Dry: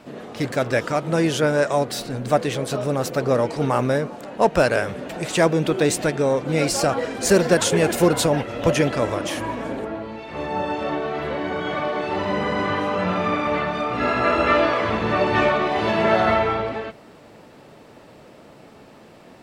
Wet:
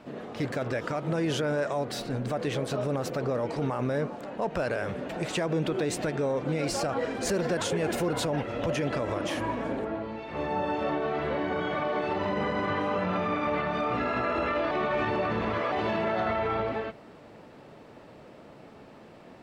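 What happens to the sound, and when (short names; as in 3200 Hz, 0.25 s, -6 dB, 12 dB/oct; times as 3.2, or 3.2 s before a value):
14.71–15.72 reverse
whole clip: bell 13000 Hz -9 dB 2 oct; limiter -17 dBFS; gain -3 dB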